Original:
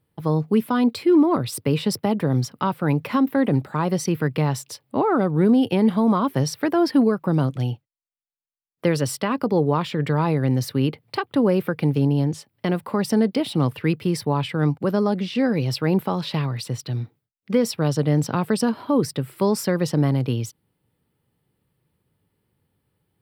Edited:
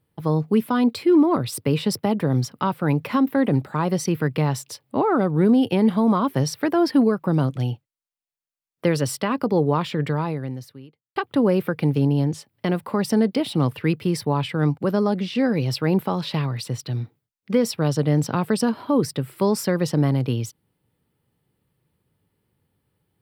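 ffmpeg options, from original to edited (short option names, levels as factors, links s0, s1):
-filter_complex "[0:a]asplit=2[s0][s1];[s0]atrim=end=11.16,asetpts=PTS-STARTPTS,afade=t=out:st=9.99:d=1.17:c=qua[s2];[s1]atrim=start=11.16,asetpts=PTS-STARTPTS,afade=t=in:d=0.004:c=hsin[s3];[s2][s3]concat=n=2:v=0:a=1"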